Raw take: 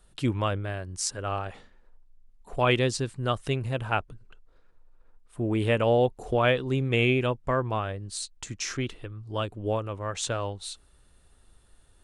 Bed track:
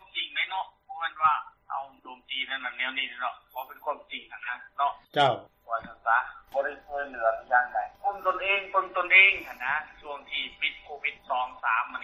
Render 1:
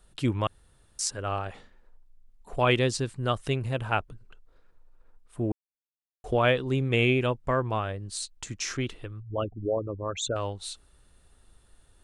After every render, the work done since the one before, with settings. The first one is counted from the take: 0.47–0.99 s: room tone; 5.52–6.24 s: mute; 9.20–10.36 s: resonances exaggerated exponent 3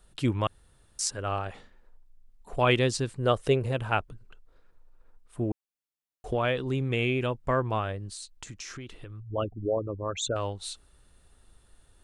3.08–3.71 s: peaking EQ 480 Hz +6 dB -> +13.5 dB; 5.43–7.43 s: compression 2:1, threshold -25 dBFS; 8.10–9.31 s: compression 5:1, threshold -38 dBFS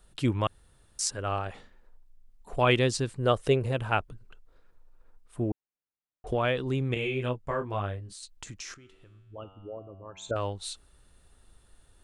5.51–6.27 s: distance through air 480 m; 6.94–8.23 s: detune thickener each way 19 cents; 8.74–10.31 s: feedback comb 95 Hz, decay 1.6 s, mix 80%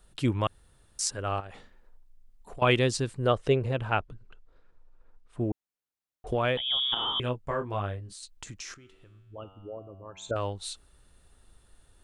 1.40–2.62 s: compression, threshold -39 dBFS; 3.27–5.40 s: distance through air 76 m; 6.57–7.20 s: frequency inversion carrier 3.5 kHz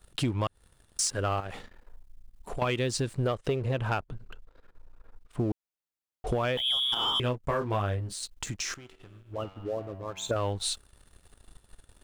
compression 16:1, threshold -31 dBFS, peak gain reduction 14 dB; waveshaping leveller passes 2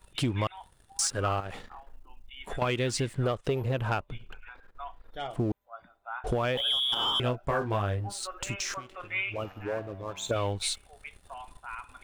add bed track -15 dB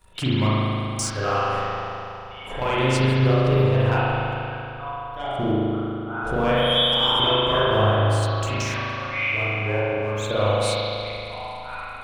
spring tank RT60 2.9 s, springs 38 ms, chirp 35 ms, DRR -9.5 dB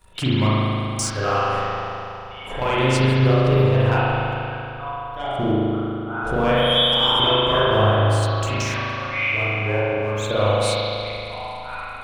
trim +2 dB

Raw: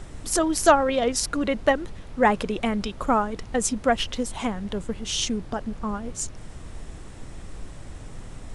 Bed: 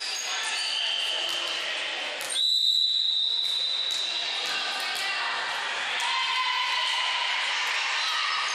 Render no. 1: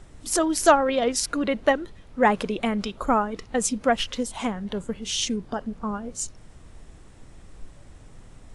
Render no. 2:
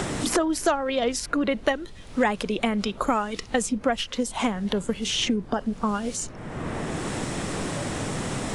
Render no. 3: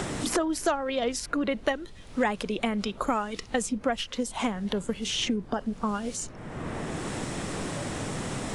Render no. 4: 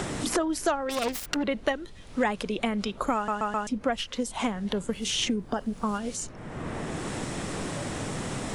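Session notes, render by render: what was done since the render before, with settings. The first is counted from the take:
noise print and reduce 8 dB
three bands compressed up and down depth 100%
trim -3.5 dB
0.89–1.43 s: self-modulated delay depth 0.56 ms; 3.15 s: stutter in place 0.13 s, 4 plays; 4.93–5.98 s: treble shelf 10 kHz +11.5 dB

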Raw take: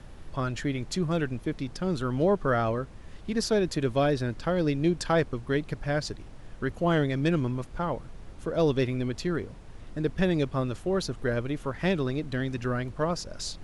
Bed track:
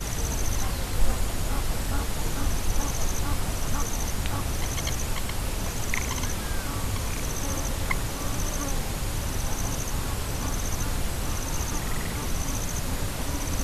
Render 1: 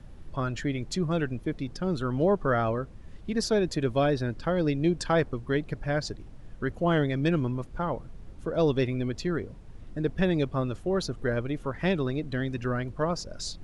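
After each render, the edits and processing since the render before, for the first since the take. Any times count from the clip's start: noise reduction 7 dB, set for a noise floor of -46 dBFS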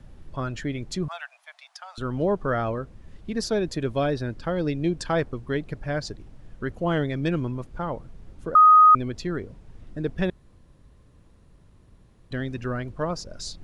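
1.08–1.98 s: steep high-pass 670 Hz 72 dB/octave; 8.55–8.95 s: bleep 1.25 kHz -9.5 dBFS; 10.30–12.31 s: room tone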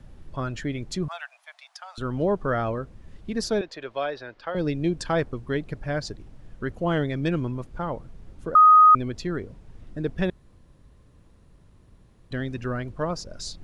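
3.61–4.55 s: three-band isolator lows -21 dB, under 480 Hz, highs -22 dB, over 5 kHz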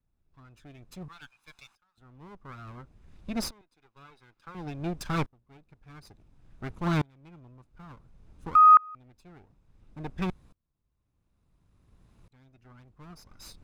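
comb filter that takes the minimum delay 0.8 ms; sawtooth tremolo in dB swelling 0.57 Hz, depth 32 dB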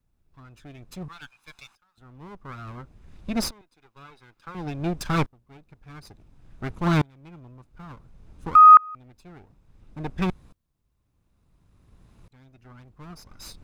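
trim +5.5 dB

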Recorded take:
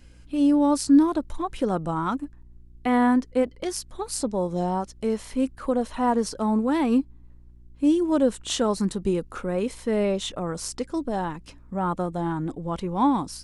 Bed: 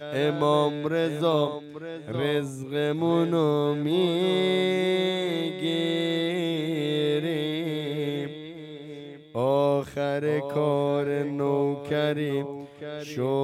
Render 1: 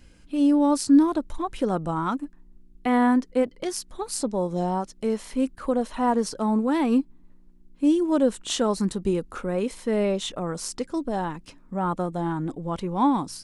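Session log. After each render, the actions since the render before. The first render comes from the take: de-hum 60 Hz, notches 2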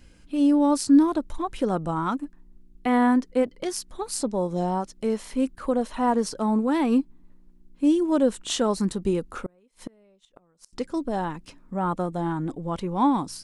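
9.35–10.73 s: inverted gate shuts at -21 dBFS, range -35 dB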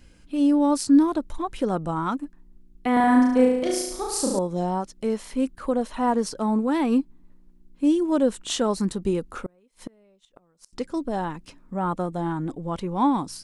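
2.93–4.39 s: flutter echo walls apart 6.1 m, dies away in 0.92 s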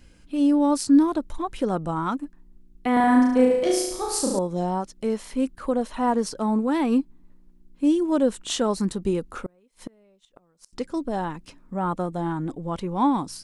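3.49–4.19 s: doubling 14 ms -3.5 dB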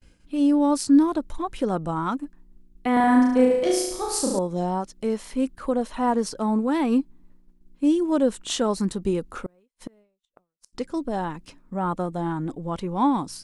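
expander -47 dBFS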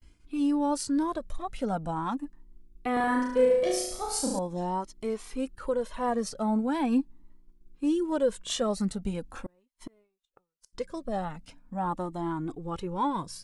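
Shepard-style flanger rising 0.41 Hz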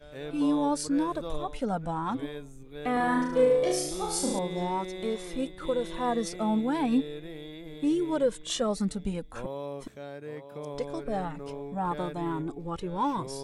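add bed -14.5 dB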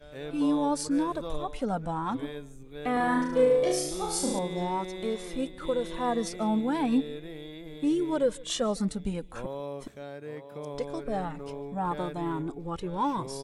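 delay 150 ms -23.5 dB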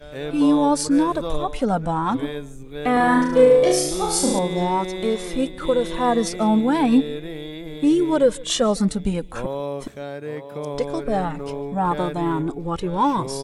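trim +9 dB

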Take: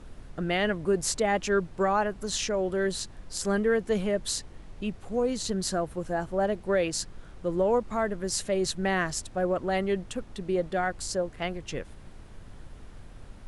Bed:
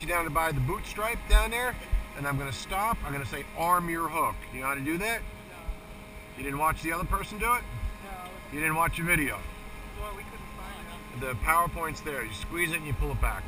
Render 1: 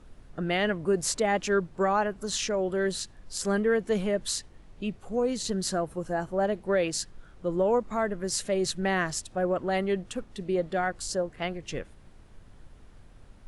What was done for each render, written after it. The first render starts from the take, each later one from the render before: noise print and reduce 6 dB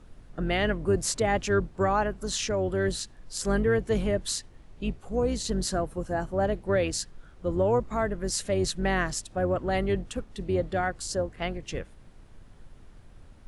octave divider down 2 oct, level -1 dB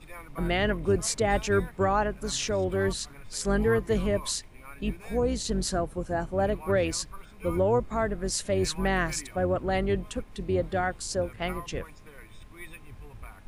add bed -17 dB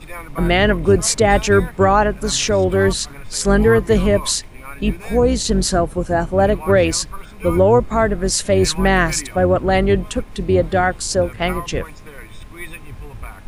trim +11.5 dB; peak limiter -3 dBFS, peak gain reduction 1.5 dB

